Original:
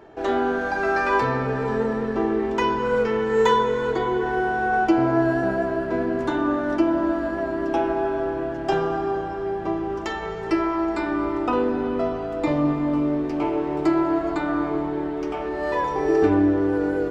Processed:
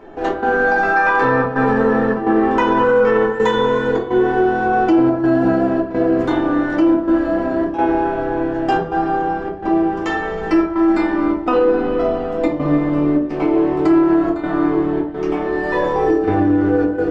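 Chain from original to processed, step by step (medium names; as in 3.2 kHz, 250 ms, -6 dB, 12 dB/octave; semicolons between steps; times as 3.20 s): treble shelf 4.7 kHz -8 dB; trance gate "xx.xxxxxxx.xx" 106 bpm -12 dB; 0.94–3.39 s: peaking EQ 1.1 kHz +7.5 dB 1.6 oct; simulated room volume 210 m³, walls furnished, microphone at 2 m; peak limiter -10.5 dBFS, peak gain reduction 7.5 dB; trim +4 dB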